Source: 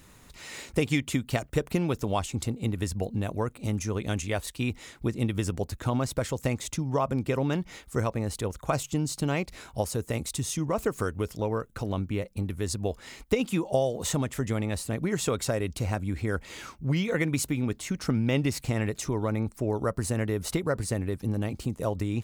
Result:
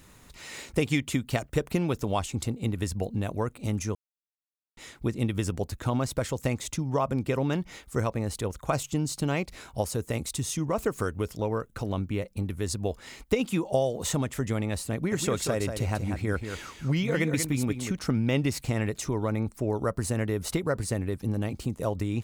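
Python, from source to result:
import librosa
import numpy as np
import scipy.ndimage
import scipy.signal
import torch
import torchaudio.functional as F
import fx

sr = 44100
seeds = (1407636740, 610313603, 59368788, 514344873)

y = fx.echo_single(x, sr, ms=187, db=-7.5, at=(14.93, 17.99))
y = fx.edit(y, sr, fx.silence(start_s=3.95, length_s=0.82), tone=tone)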